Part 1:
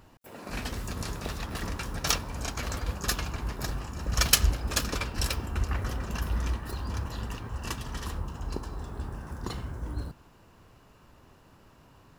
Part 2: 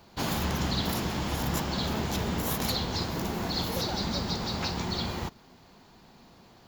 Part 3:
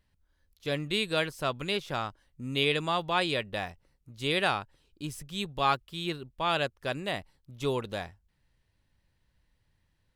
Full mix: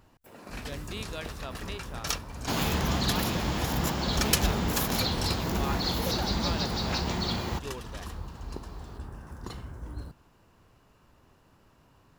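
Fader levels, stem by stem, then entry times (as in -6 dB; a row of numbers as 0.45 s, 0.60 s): -4.5 dB, +1.0 dB, -11.0 dB; 0.00 s, 2.30 s, 0.00 s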